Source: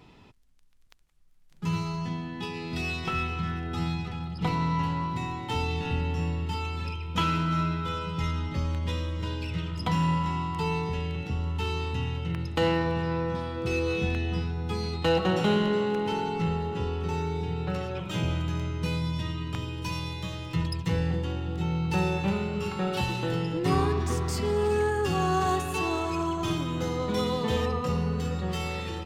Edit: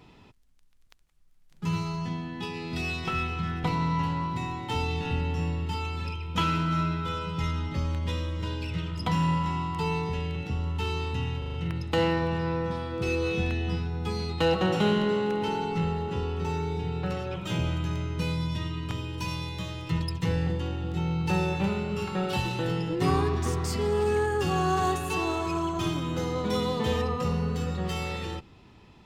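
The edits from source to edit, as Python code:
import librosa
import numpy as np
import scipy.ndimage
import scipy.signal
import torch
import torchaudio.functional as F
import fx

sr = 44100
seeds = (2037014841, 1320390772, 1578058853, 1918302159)

y = fx.edit(x, sr, fx.cut(start_s=3.64, length_s=0.8),
    fx.stutter(start_s=12.18, slice_s=0.04, count=5), tone=tone)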